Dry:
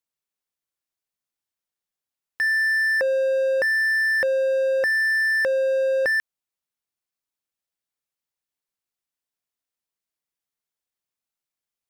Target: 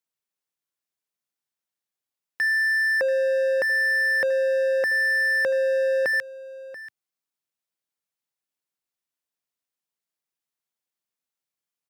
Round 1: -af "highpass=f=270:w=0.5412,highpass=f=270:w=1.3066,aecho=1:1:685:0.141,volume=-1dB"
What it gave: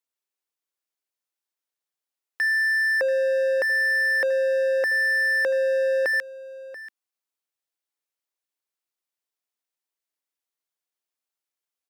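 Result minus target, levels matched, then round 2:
125 Hz band -17.0 dB
-af "highpass=f=100:w=0.5412,highpass=f=100:w=1.3066,aecho=1:1:685:0.141,volume=-1dB"

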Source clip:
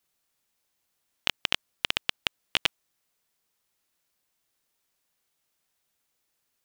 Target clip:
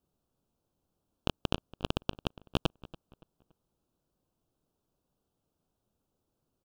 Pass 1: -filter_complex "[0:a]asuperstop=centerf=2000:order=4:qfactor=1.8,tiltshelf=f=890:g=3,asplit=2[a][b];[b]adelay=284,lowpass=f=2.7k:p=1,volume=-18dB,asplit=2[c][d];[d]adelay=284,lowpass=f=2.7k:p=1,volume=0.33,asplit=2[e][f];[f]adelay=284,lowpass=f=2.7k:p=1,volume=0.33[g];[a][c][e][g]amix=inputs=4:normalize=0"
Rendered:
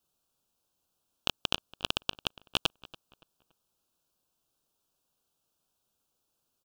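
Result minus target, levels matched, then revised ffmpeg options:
1000 Hz band -2.5 dB
-filter_complex "[0:a]asuperstop=centerf=2000:order=4:qfactor=1.8,tiltshelf=f=890:g=13,asplit=2[a][b];[b]adelay=284,lowpass=f=2.7k:p=1,volume=-18dB,asplit=2[c][d];[d]adelay=284,lowpass=f=2.7k:p=1,volume=0.33,asplit=2[e][f];[f]adelay=284,lowpass=f=2.7k:p=1,volume=0.33[g];[a][c][e][g]amix=inputs=4:normalize=0"

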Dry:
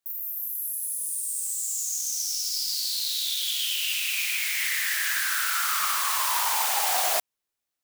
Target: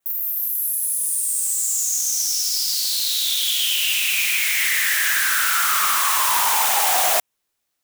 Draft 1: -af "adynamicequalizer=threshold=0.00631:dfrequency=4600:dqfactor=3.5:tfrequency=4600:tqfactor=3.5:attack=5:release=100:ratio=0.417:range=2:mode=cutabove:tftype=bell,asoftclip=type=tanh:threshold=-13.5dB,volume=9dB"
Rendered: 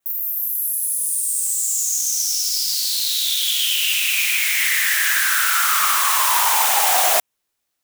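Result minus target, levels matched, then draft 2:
soft clip: distortion -11 dB
-af "adynamicequalizer=threshold=0.00631:dfrequency=4600:dqfactor=3.5:tfrequency=4600:tqfactor=3.5:attack=5:release=100:ratio=0.417:range=2:mode=cutabove:tftype=bell,asoftclip=type=tanh:threshold=-21dB,volume=9dB"

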